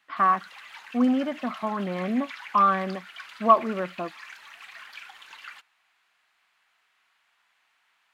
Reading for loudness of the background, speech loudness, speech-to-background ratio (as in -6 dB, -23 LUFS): -42.5 LUFS, -25.0 LUFS, 17.5 dB